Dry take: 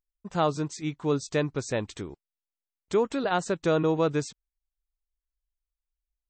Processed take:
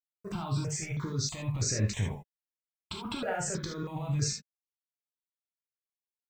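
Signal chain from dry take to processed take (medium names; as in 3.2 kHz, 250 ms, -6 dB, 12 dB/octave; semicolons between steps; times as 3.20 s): peaking EQ 110 Hz +5.5 dB 0.67 oct; compressor with a negative ratio -33 dBFS, ratio -1; small samples zeroed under -54.5 dBFS; gated-style reverb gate 100 ms flat, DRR -1 dB; stepped phaser 3.1 Hz 870–3300 Hz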